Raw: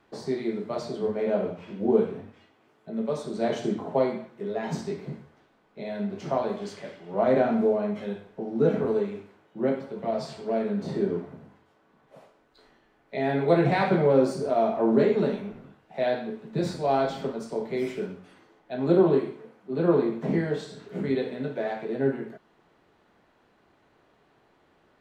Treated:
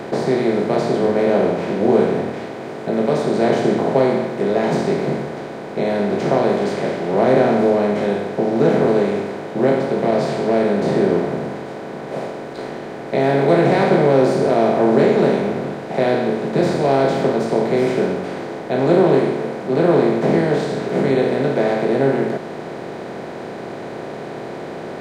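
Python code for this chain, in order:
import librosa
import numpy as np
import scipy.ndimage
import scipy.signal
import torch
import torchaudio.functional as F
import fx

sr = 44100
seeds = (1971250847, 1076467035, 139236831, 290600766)

y = fx.bin_compress(x, sr, power=0.4)
y = F.gain(torch.from_numpy(y), 2.0).numpy()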